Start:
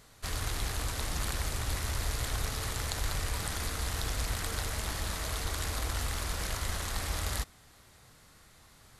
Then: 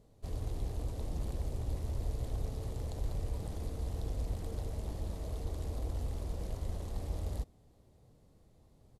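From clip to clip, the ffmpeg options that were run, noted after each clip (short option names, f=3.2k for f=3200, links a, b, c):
-af "firequalizer=gain_entry='entry(500,0);entry(1400,-23);entry(2800,-18)':delay=0.05:min_phase=1,volume=-1.5dB"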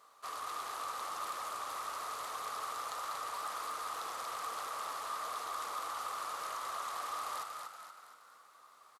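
-filter_complex "[0:a]highpass=f=1.2k:t=q:w=11,asplit=7[a][b][c][d][e][f][g];[b]adelay=236,afreqshift=42,volume=-5.5dB[h];[c]adelay=472,afreqshift=84,volume=-11.9dB[i];[d]adelay=708,afreqshift=126,volume=-18.3dB[j];[e]adelay=944,afreqshift=168,volume=-24.6dB[k];[f]adelay=1180,afreqshift=210,volume=-31dB[l];[g]adelay=1416,afreqshift=252,volume=-37.4dB[m];[a][h][i][j][k][l][m]amix=inputs=7:normalize=0,asoftclip=type=tanh:threshold=-40dB,volume=9dB"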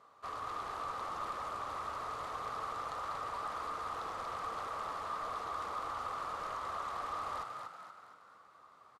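-af "aemphasis=mode=reproduction:type=riaa,volume=1dB"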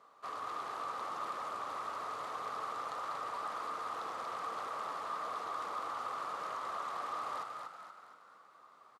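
-af "highpass=180"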